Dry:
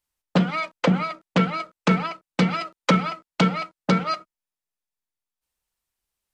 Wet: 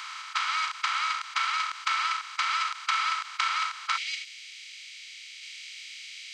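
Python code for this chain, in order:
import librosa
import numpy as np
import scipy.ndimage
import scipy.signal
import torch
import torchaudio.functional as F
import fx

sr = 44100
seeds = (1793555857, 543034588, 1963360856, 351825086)

y = fx.bin_compress(x, sr, power=0.2)
y = fx.steep_highpass(y, sr, hz=fx.steps((0.0, 1000.0), (3.96, 2100.0)), slope=48)
y = y * librosa.db_to_amplitude(-8.0)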